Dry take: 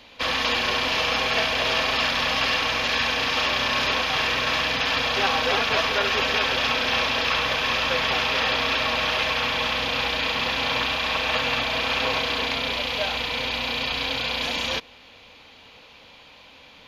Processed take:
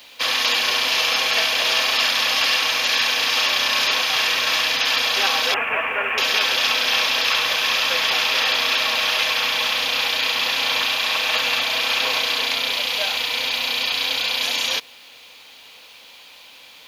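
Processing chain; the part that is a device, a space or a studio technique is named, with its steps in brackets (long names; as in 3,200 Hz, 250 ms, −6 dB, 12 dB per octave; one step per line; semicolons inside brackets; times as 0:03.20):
0:05.54–0:06.18: Butterworth low-pass 2,700 Hz 72 dB per octave
turntable without a phono preamp (RIAA equalisation recording; white noise bed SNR 37 dB)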